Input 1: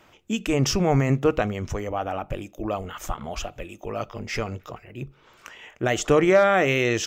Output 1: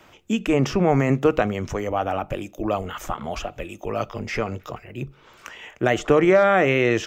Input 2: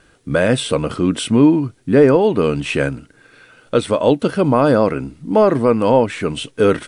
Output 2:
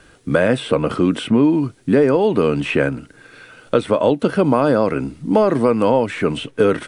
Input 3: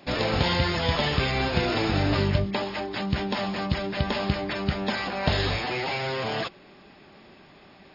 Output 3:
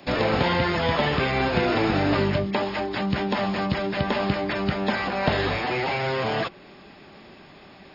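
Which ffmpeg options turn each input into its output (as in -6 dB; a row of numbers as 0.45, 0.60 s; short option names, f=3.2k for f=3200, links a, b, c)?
-filter_complex "[0:a]acrossover=split=150|2700[a][b][c];[a]acompressor=threshold=-37dB:ratio=4[d];[b]acompressor=threshold=-16dB:ratio=4[e];[c]acompressor=threshold=-44dB:ratio=4[f];[d][e][f]amix=inputs=3:normalize=0,volume=4dB"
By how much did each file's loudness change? +2.0, -1.5, +2.0 LU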